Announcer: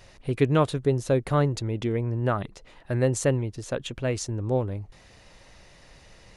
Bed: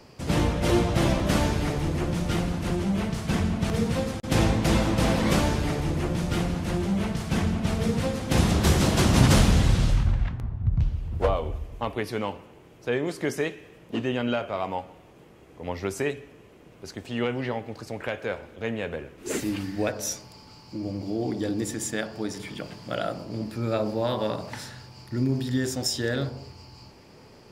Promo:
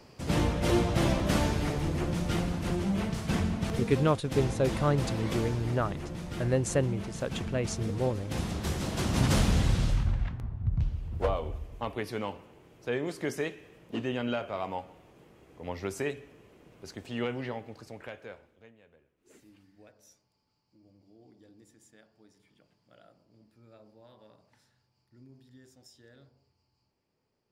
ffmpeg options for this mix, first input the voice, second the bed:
ffmpeg -i stem1.wav -i stem2.wav -filter_complex "[0:a]adelay=3500,volume=-4dB[link_01];[1:a]volume=3dB,afade=type=out:start_time=3.4:duration=0.82:silence=0.398107,afade=type=in:start_time=8.85:duration=0.74:silence=0.473151,afade=type=out:start_time=17.22:duration=1.51:silence=0.0595662[link_02];[link_01][link_02]amix=inputs=2:normalize=0" out.wav

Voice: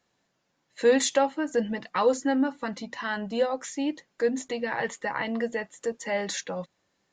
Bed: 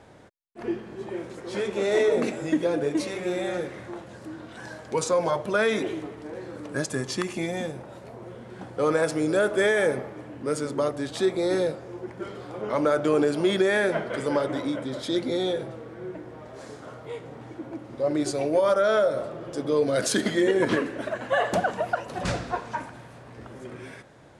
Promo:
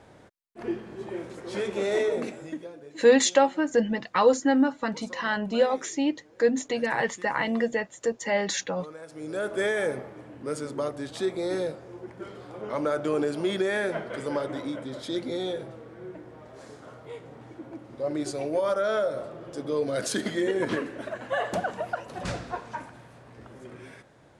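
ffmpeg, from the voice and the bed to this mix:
ffmpeg -i stem1.wav -i stem2.wav -filter_complex "[0:a]adelay=2200,volume=3dB[link_01];[1:a]volume=14dB,afade=type=out:start_time=1.77:duration=0.97:silence=0.11885,afade=type=in:start_time=9.08:duration=0.53:silence=0.16788[link_02];[link_01][link_02]amix=inputs=2:normalize=0" out.wav

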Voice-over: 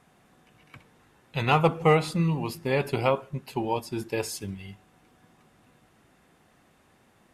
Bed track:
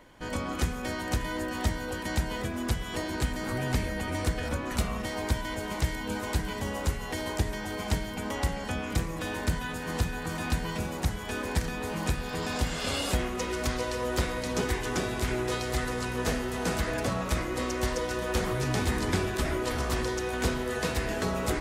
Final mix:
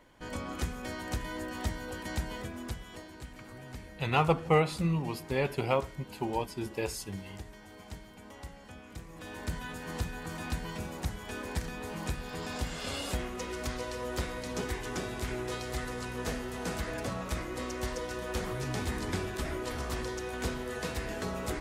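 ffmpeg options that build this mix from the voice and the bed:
ffmpeg -i stem1.wav -i stem2.wav -filter_complex "[0:a]adelay=2650,volume=-4.5dB[link_01];[1:a]volume=5dB,afade=type=out:start_time=2.26:duration=0.87:silence=0.281838,afade=type=in:start_time=9.02:duration=0.61:silence=0.298538[link_02];[link_01][link_02]amix=inputs=2:normalize=0" out.wav

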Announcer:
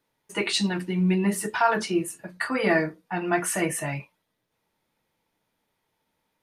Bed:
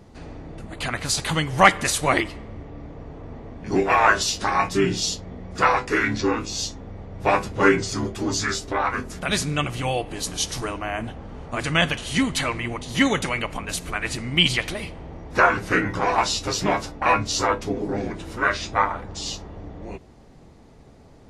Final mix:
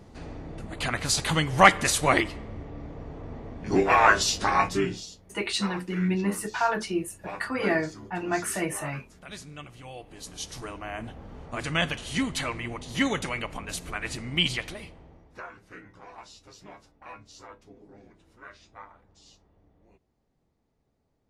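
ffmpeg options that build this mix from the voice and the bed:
ffmpeg -i stem1.wav -i stem2.wav -filter_complex "[0:a]adelay=5000,volume=-3.5dB[link_01];[1:a]volume=11dB,afade=type=out:start_time=4.61:duration=0.45:silence=0.141254,afade=type=in:start_time=9.89:duration=1.36:silence=0.237137,afade=type=out:start_time=14.37:duration=1.06:silence=0.105925[link_02];[link_01][link_02]amix=inputs=2:normalize=0" out.wav

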